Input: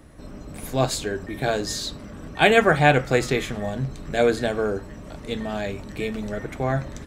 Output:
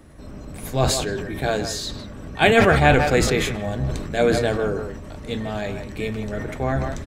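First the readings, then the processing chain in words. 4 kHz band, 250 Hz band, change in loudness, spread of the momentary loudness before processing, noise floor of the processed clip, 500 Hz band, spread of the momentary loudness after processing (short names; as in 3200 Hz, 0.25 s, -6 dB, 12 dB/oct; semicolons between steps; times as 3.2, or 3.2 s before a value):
+2.0 dB, +2.5 dB, +2.0 dB, 20 LU, -37 dBFS, +1.5 dB, 17 LU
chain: octaver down 1 oct, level -3 dB; speakerphone echo 0.16 s, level -10 dB; sustainer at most 44 dB/s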